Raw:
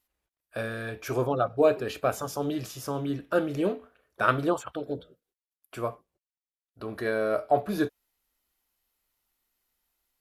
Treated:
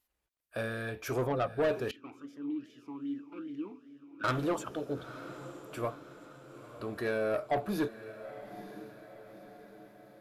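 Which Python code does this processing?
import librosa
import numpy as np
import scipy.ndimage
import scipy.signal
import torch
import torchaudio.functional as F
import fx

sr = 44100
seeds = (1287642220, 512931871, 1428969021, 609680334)

y = 10.0 ** (-22.0 / 20.0) * np.tanh(x / 10.0 ** (-22.0 / 20.0))
y = fx.echo_diffused(y, sr, ms=944, feedback_pct=51, wet_db=-13.5)
y = fx.vowel_sweep(y, sr, vowels='i-u', hz=2.5, at=(1.91, 4.24))
y = y * librosa.db_to_amplitude(-2.0)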